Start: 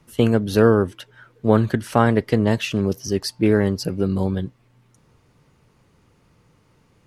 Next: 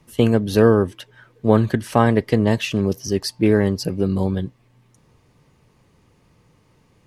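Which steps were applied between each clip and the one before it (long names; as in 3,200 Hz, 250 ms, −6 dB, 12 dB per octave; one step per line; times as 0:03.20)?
notch filter 1,400 Hz, Q 8.4
level +1 dB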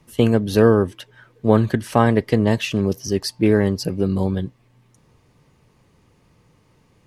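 no processing that can be heard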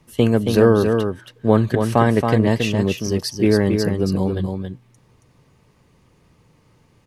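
single-tap delay 275 ms −5.5 dB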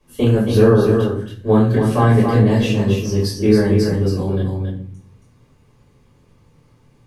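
convolution reverb RT60 0.50 s, pre-delay 4 ms, DRR −8 dB
level −11.5 dB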